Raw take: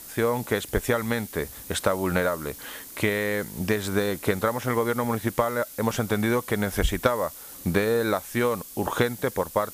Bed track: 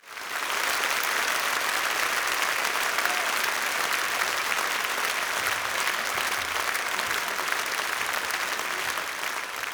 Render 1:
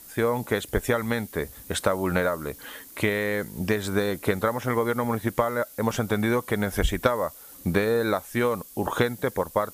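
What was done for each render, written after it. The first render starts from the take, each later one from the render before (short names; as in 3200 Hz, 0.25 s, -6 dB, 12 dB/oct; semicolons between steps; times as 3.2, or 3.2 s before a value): denoiser 6 dB, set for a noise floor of -43 dBFS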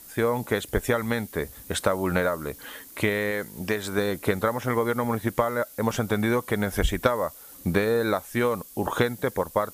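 3.31–3.98 low shelf 260 Hz -7 dB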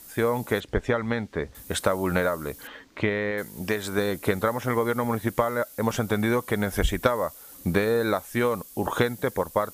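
0.6–1.55 air absorption 140 m; 2.67–3.38 air absorption 180 m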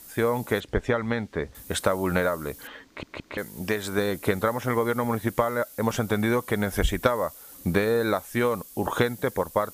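2.86 stutter in place 0.17 s, 3 plays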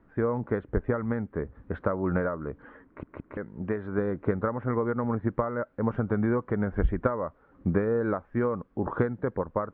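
LPF 1400 Hz 24 dB/oct; bell 760 Hz -7 dB 1.3 oct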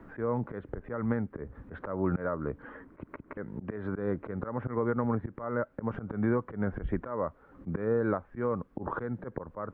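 auto swell 0.16 s; three-band squash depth 40%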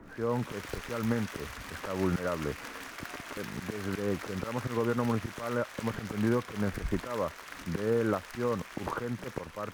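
add bed track -18 dB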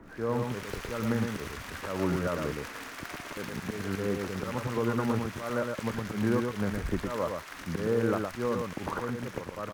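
echo 0.113 s -4.5 dB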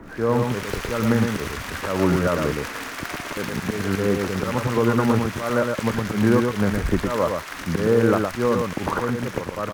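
gain +9.5 dB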